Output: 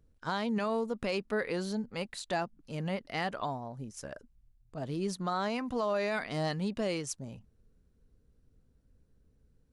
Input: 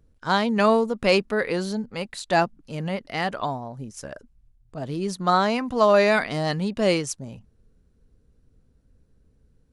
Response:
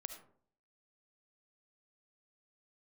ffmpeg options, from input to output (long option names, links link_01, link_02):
-af "alimiter=limit=-16.5dB:level=0:latency=1:release=240,volume=-6dB"